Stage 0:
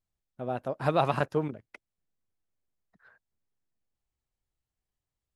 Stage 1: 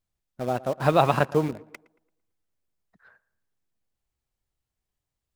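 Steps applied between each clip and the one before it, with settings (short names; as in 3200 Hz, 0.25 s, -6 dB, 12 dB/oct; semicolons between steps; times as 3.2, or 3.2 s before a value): in parallel at -9 dB: requantised 6-bit, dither none; on the sum: tape echo 0.114 s, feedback 43%, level -19 dB, low-pass 2200 Hz; gain +3 dB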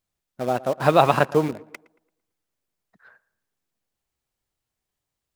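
low shelf 110 Hz -10 dB; gain +4 dB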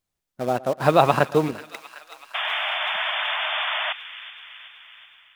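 painted sound noise, 2.34–3.93, 590–3600 Hz -30 dBFS; thin delay 0.377 s, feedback 62%, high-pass 1800 Hz, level -12.5 dB; AGC gain up to 4 dB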